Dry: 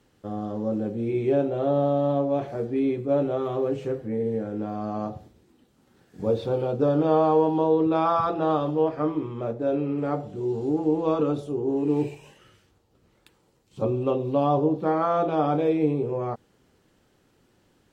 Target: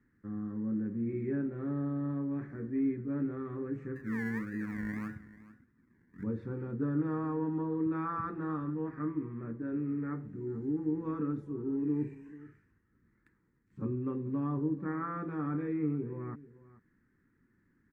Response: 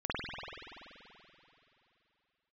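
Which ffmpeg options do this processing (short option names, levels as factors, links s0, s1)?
-filter_complex "[0:a]asplit=3[s0][s1][s2];[s0]afade=t=out:st=3.95:d=0.02[s3];[s1]acrusher=samples=28:mix=1:aa=0.000001:lfo=1:lforange=16.8:lforate=1.7,afade=t=in:st=3.95:d=0.02,afade=t=out:st=6.22:d=0.02[s4];[s2]afade=t=in:st=6.22:d=0.02[s5];[s3][s4][s5]amix=inputs=3:normalize=0,firequalizer=gain_entry='entry(140,0);entry(240,4);entry(660,-25);entry(970,-8);entry(1800,6);entry(3000,-26);entry(4200,-22);entry(6600,-19)':delay=0.05:min_phase=1,aecho=1:1:438:0.126,volume=0.447"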